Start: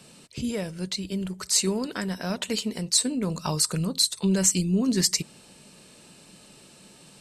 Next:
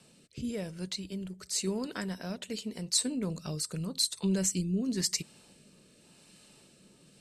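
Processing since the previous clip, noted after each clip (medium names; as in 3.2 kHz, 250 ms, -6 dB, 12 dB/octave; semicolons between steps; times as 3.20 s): rotary cabinet horn 0.9 Hz; trim -5.5 dB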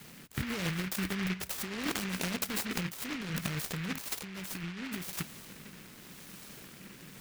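compressor with a negative ratio -40 dBFS, ratio -1; delay time shaken by noise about 1.9 kHz, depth 0.36 ms; trim +3.5 dB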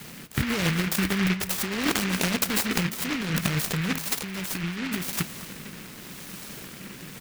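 echo from a far wall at 38 m, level -15 dB; trim +9 dB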